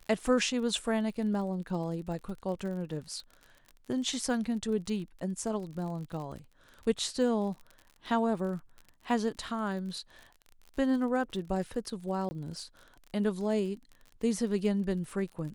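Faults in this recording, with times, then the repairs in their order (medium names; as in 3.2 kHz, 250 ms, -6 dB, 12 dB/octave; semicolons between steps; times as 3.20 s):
crackle 41 per s -40 dBFS
12.29–12.31 s: dropout 20 ms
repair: de-click; interpolate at 12.29 s, 20 ms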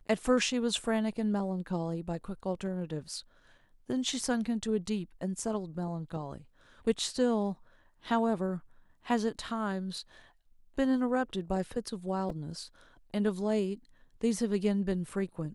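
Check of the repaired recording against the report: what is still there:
nothing left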